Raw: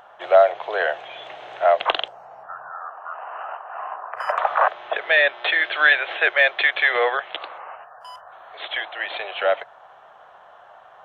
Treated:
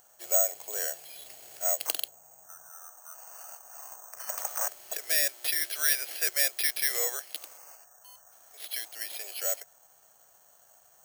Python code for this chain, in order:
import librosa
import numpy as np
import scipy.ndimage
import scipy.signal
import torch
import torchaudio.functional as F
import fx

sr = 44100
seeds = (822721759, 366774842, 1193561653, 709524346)

y = fx.peak_eq(x, sr, hz=1000.0, db=-14.5, octaves=2.2)
y = (np.kron(scipy.signal.resample_poly(y, 1, 6), np.eye(6)[0]) * 6)[:len(y)]
y = y * 10.0 ** (-8.5 / 20.0)